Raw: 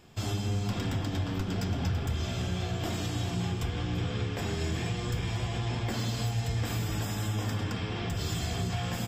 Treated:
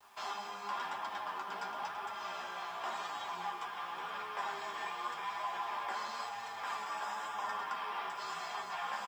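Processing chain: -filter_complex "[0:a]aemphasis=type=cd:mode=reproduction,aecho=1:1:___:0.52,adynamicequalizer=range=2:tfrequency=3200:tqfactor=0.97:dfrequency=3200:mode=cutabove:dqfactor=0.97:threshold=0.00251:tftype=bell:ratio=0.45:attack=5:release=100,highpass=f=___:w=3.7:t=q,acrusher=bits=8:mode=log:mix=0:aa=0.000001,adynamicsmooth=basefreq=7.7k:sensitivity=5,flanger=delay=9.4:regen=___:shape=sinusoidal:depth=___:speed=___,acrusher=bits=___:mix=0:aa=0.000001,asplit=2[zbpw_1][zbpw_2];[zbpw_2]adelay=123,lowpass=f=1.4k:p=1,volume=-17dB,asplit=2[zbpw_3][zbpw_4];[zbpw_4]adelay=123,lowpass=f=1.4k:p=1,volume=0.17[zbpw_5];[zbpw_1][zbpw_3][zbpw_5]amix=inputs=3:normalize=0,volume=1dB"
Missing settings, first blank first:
5, 980, 29, 6.2, 0.93, 10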